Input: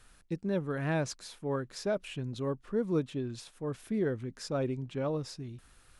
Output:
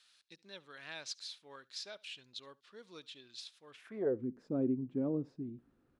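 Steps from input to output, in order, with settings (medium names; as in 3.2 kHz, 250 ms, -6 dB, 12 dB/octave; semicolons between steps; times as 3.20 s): band-pass sweep 4 kHz -> 270 Hz, 3.69–4.21 s; on a send: delay 71 ms -24 dB; on the sum: trim +4.5 dB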